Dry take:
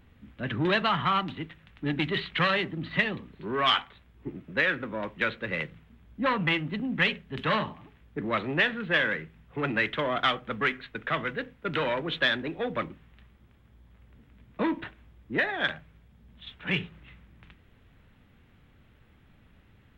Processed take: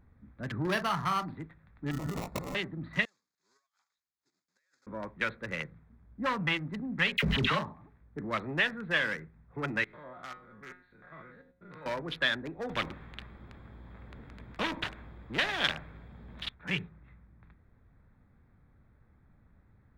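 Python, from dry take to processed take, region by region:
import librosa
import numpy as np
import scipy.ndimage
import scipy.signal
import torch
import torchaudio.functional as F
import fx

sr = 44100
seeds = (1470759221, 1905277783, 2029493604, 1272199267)

y = fx.chain(x, sr, fx.doubler(ms=44.0, db=-10.0),
    fx.resample_linear(factor=6), at=(0.62, 1.36))
y = fx.chain(y, sr, fx.low_shelf(hz=250.0, db=3.0),
    fx.over_compress(threshold_db=-31.0, ratio=-1.0),
    fx.sample_hold(seeds[0], rate_hz=1600.0, jitter_pct=0), at=(1.91, 2.55))
y = fx.chain(y, sr, fx.block_float(bits=3),
    fx.bandpass_q(hz=6000.0, q=9.3),
    fx.over_compress(threshold_db=-54.0, ratio=-0.5), at=(3.05, 4.87))
y = fx.chain(y, sr, fx.notch(hz=1700.0, q=8.3),
    fx.dispersion(late='lows', ms=61.0, hz=1300.0),
    fx.env_flatten(amount_pct=100), at=(7.17, 7.59))
y = fx.chain(y, sr, fx.spec_steps(hold_ms=100),
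    fx.high_shelf(hz=4800.0, db=6.0),
    fx.comb_fb(f0_hz=180.0, decay_s=0.41, harmonics='all', damping=0.0, mix_pct=80), at=(9.84, 11.86))
y = fx.chain(y, sr, fx.peak_eq(hz=3100.0, db=10.5, octaves=0.56),
    fx.spectral_comp(ratio=2.0), at=(12.69, 16.49))
y = fx.wiener(y, sr, points=15)
y = fx.peak_eq(y, sr, hz=380.0, db=-4.0, octaves=2.0)
y = y * librosa.db_to_amplitude(-2.5)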